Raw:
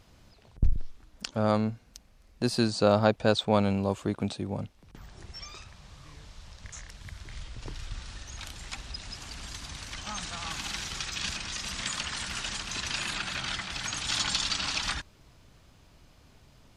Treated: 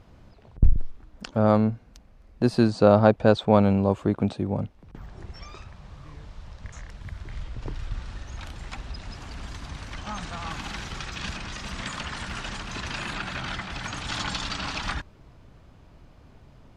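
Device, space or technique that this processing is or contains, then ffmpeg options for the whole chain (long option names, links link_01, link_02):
through cloth: -af "highshelf=frequency=2700:gain=-16,volume=6.5dB"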